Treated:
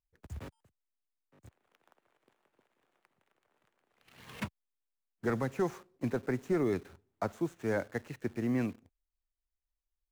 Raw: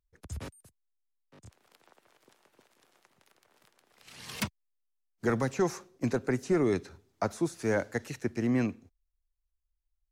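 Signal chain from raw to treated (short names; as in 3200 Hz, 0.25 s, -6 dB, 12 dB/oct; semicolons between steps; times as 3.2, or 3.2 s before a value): median filter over 9 samples; in parallel at -3.5 dB: requantised 8-bit, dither none; on the sum: gain -8 dB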